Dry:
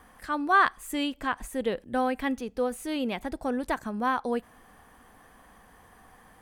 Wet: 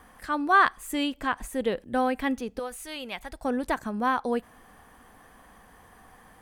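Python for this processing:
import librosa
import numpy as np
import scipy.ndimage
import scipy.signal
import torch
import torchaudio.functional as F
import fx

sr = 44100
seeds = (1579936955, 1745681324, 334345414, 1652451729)

y = fx.peak_eq(x, sr, hz=270.0, db=-14.5, octaves=2.3, at=(2.59, 3.45))
y = y * librosa.db_to_amplitude(1.5)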